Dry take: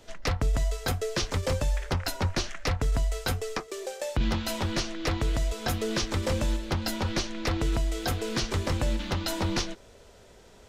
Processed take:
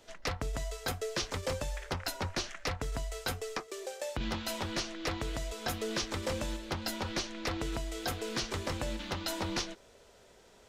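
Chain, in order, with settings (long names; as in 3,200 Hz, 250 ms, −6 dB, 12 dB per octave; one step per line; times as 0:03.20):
low-shelf EQ 200 Hz −8 dB
level −4 dB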